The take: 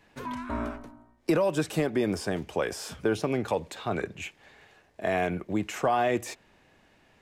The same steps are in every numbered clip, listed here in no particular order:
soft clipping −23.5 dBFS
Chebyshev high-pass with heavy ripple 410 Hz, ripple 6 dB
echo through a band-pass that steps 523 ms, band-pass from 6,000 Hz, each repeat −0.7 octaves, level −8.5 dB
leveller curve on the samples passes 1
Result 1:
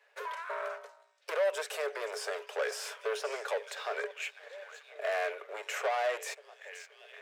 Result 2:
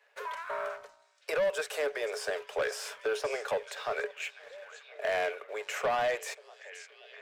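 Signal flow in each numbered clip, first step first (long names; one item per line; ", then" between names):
echo through a band-pass that steps, then leveller curve on the samples, then soft clipping, then Chebyshev high-pass with heavy ripple
Chebyshev high-pass with heavy ripple, then leveller curve on the samples, then echo through a band-pass that steps, then soft clipping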